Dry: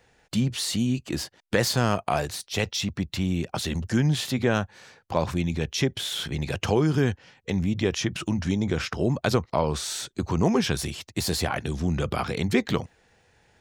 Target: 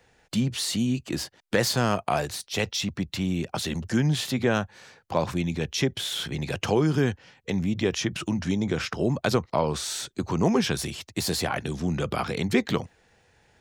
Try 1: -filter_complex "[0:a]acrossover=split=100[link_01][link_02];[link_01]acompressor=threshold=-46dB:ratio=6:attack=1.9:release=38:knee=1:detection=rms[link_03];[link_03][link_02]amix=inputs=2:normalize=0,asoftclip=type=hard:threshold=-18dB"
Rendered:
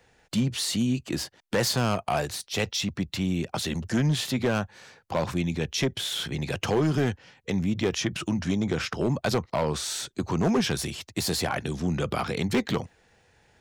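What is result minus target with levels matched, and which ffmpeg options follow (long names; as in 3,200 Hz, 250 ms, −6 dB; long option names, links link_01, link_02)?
hard clipping: distortion +27 dB
-filter_complex "[0:a]acrossover=split=100[link_01][link_02];[link_01]acompressor=threshold=-46dB:ratio=6:attack=1.9:release=38:knee=1:detection=rms[link_03];[link_03][link_02]amix=inputs=2:normalize=0,asoftclip=type=hard:threshold=-9.5dB"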